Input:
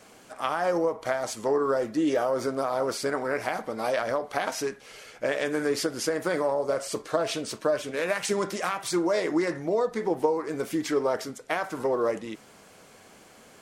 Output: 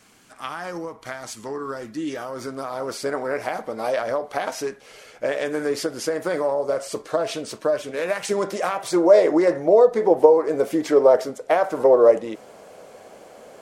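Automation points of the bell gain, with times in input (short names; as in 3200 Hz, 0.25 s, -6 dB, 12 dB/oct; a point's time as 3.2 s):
bell 570 Hz 1.3 oct
2.16 s -9.5 dB
2.85 s -2 dB
3.07 s +4 dB
8.11 s +4 dB
9.05 s +14.5 dB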